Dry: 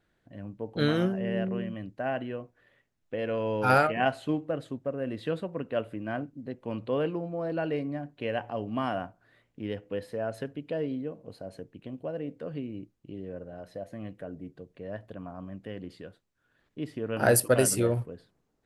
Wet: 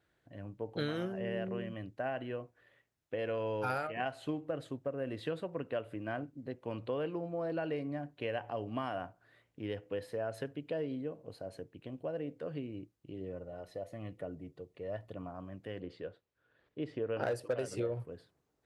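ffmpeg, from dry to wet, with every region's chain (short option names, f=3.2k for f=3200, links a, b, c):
-filter_complex "[0:a]asettb=1/sr,asplit=3[a][b][c];[a]atrim=end=13.214[d];[b]atrim=start=13.21:end=15.29,asetpts=PTS-STARTPTS,afade=t=in:d=0.004:c=qsin,afade=t=out:st=2.076:d=0.004:c=qsin,aphaser=in_gain=1:out_gain=1:delay=2.8:decay=0.23:speed=1:type=triangular,asuperstop=centerf=1600:order=8:qfactor=7.9[e];[c]atrim=start=15.286[f];[d][e]acrossfade=d=0.004:c1=hsin:c2=qsin[g];[g][f]acrossfade=d=0.004:c1=qsin:c2=hsin,asettb=1/sr,asplit=3[h][i][j];[h]atrim=end=15.804[k];[i]atrim=start=15.8:end=18,asetpts=PTS-STARTPTS,afade=t=in:d=0.004:c=qsin,afade=t=out:st=2.196:d=0.004:c=qsin,lowpass=4.4k,equalizer=f=490:t=o:w=0.62:g=6.5,asoftclip=type=hard:threshold=-11.5dB[l];[j]atrim=start=17.996[m];[k][l]acrossfade=d=0.004:c1=hsin:c2=qsin[n];[n][m]acrossfade=d=0.004:c1=qsin:c2=hsin,highpass=55,equalizer=f=210:w=2.5:g=-7,acompressor=threshold=-30dB:ratio=6,volume=-2dB"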